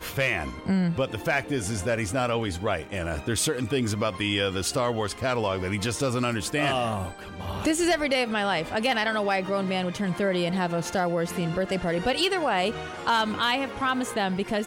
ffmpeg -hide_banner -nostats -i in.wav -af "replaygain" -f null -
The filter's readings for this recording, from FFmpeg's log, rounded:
track_gain = +6.8 dB
track_peak = 0.152